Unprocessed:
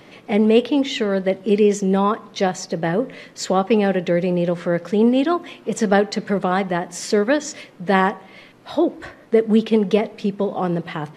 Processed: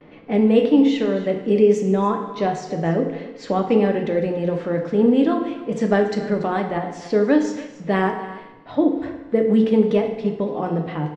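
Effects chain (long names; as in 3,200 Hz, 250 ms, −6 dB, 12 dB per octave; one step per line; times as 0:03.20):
mains-hum notches 60/120/180 Hz
noise gate with hold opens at −40 dBFS
low-pass that shuts in the quiet parts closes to 2,700 Hz, open at −14 dBFS
spectral tilt −2 dB per octave
on a send: single-tap delay 285 ms −16.5 dB
on the sum: flanger 0.25 Hz, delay 8.3 ms, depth 7 ms, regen −82%
feedback delay network reverb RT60 0.96 s, low-frequency decay 0.95×, high-frequency decay 0.85×, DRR 3.5 dB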